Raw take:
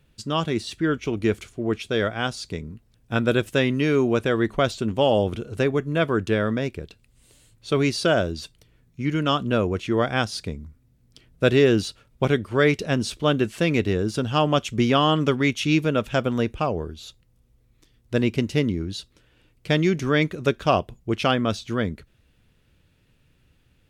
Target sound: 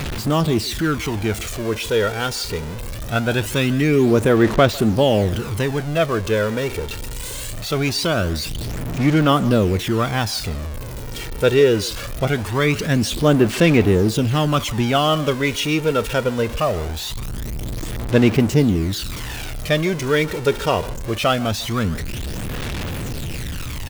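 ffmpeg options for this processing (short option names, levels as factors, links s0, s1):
-filter_complex "[0:a]aeval=exprs='val(0)+0.5*0.0562*sgn(val(0))':c=same,aphaser=in_gain=1:out_gain=1:delay=2.2:decay=0.49:speed=0.22:type=sinusoidal,asplit=2[s0][s1];[s1]adelay=150,highpass=300,lowpass=3400,asoftclip=type=hard:threshold=0.282,volume=0.126[s2];[s0][s2]amix=inputs=2:normalize=0"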